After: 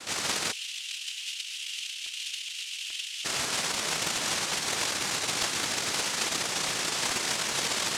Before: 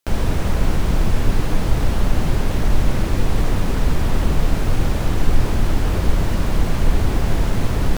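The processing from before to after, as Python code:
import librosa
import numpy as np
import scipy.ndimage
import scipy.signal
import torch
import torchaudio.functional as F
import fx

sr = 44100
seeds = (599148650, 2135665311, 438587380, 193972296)

y = fx.delta_mod(x, sr, bps=64000, step_db=-28.0)
y = fx.noise_vocoder(y, sr, seeds[0], bands=1)
y = fx.dmg_crackle(y, sr, seeds[1], per_s=86.0, level_db=-46.0)
y = fx.ladder_highpass(y, sr, hz=2600.0, resonance_pct=65, at=(0.51, 3.24), fade=0.02)
y = fx.buffer_crackle(y, sr, first_s=0.8, period_s=0.42, block=128, kind='repeat')
y = fx.doppler_dist(y, sr, depth_ms=0.26)
y = F.gain(torch.from_numpy(y), -5.5).numpy()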